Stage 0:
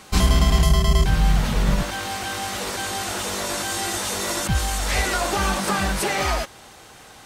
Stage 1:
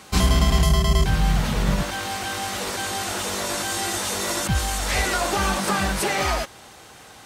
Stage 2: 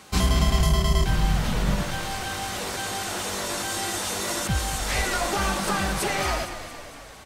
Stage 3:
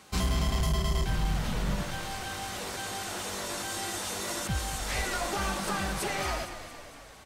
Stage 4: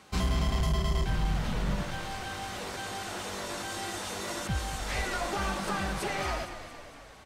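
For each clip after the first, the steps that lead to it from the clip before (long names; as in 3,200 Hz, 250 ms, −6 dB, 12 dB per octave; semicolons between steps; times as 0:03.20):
high-pass filter 46 Hz
echo with shifted repeats 229 ms, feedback 59%, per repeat −33 Hz, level −11 dB; level −3 dB
hard clipping −16 dBFS, distortion −18 dB; level −6 dB
high-shelf EQ 6,400 Hz −8.5 dB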